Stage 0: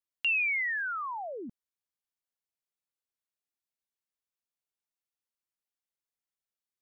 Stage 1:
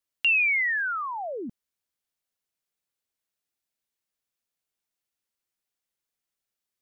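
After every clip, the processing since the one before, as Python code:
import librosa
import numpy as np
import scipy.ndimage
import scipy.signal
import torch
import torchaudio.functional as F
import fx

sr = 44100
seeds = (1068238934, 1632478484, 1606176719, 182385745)

y = fx.peak_eq(x, sr, hz=1000.0, db=-2.5, octaves=0.77)
y = y * 10.0 ** (6.0 / 20.0)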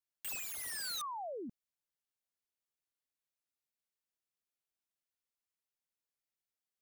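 y = (np.mod(10.0 ** (27.5 / 20.0) * x + 1.0, 2.0) - 1.0) / 10.0 ** (27.5 / 20.0)
y = y * 10.0 ** (-9.0 / 20.0)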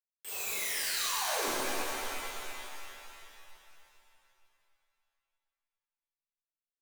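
y = fx.highpass_res(x, sr, hz=420.0, q=4.9)
y = fx.schmitt(y, sr, flips_db=-47.5)
y = fx.rev_shimmer(y, sr, seeds[0], rt60_s=2.8, semitones=7, shimmer_db=-2, drr_db=-10.5)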